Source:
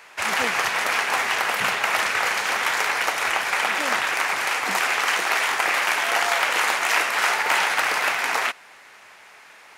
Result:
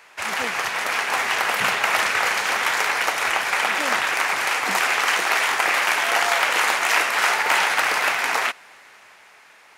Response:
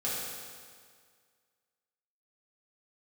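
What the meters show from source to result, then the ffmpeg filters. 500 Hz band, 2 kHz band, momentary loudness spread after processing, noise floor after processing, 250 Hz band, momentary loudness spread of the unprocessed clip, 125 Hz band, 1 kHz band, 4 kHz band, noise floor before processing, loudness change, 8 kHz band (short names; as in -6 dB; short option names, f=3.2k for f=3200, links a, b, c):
+1.0 dB, +1.0 dB, 5 LU, -50 dBFS, +1.0 dB, 3 LU, n/a, +1.0 dB, +1.0 dB, -48 dBFS, +1.0 dB, +1.0 dB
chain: -af "dynaudnorm=f=180:g=13:m=6.5dB,volume=-2.5dB"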